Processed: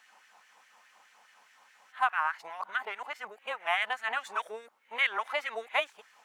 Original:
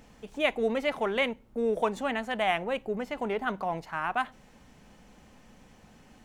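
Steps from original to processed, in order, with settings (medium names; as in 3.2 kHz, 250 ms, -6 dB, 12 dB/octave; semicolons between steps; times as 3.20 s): reverse the whole clip; LFO high-pass sine 4.8 Hz 890–1800 Hz; trim -2 dB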